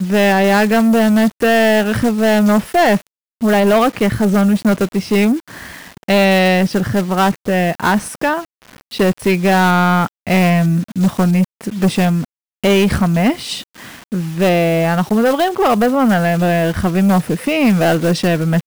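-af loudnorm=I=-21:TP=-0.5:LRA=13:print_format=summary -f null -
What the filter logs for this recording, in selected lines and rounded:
Input Integrated:    -14.6 LUFS
Input True Peak:      -7.5 dBTP
Input LRA:             2.0 LU
Input Threshold:     -24.9 LUFS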